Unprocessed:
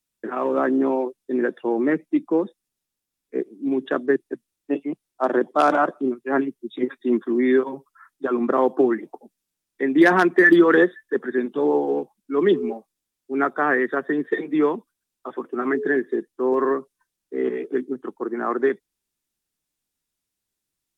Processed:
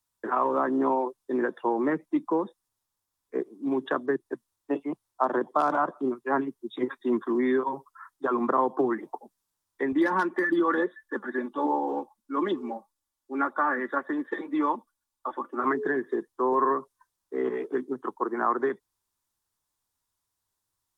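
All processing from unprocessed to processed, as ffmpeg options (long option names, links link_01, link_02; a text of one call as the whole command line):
ffmpeg -i in.wav -filter_complex "[0:a]asettb=1/sr,asplit=3[link_01][link_02][link_03];[link_01]atrim=end=9.924[link_04];[link_02]atrim=start=9.92:end=15.64,asetpts=PTS-STARTPTS,afade=type=in:duration=0.004:curve=qsin,afade=type=out:start_time=5.716:duration=0.004:curve=qsin,aecho=1:1:3.5:0.66,atrim=end_sample=252252,flanger=delay=0.8:depth=4.3:regen=76:speed=1.9:shape=sinusoidal[link_05];[link_03]atrim=start=15.636[link_06];[link_04][link_05]acrossfade=duration=0.004:curve1=hsin:curve2=qsin[link_07];[link_07][link_06]acrossfade=duration=0.004:curve1=qsin:curve2=hsin,equalizer=frequency=170:width=0.51:gain=-7,acrossover=split=290[link_08][link_09];[link_09]acompressor=threshold=-27dB:ratio=6[link_10];[link_08][link_10]amix=inputs=2:normalize=0,equalizer=frequency=100:width_type=o:width=0.67:gain=12,equalizer=frequency=1000:width_type=o:width=0.67:gain=11,equalizer=frequency=2500:width_type=o:width=0.67:gain=-6" out.wav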